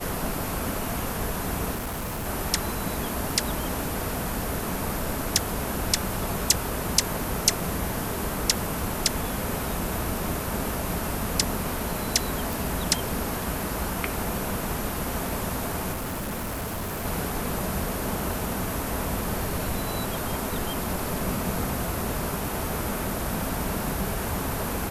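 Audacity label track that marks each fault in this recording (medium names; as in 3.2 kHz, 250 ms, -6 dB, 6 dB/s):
1.740000	2.270000	clipped -28 dBFS
12.530000	12.530000	pop
15.920000	17.060000	clipped -28 dBFS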